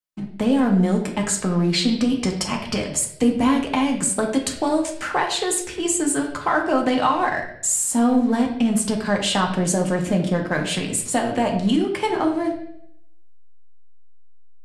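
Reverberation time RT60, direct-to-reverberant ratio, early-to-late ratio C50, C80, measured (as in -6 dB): 0.70 s, 1.0 dB, 7.0 dB, 10.5 dB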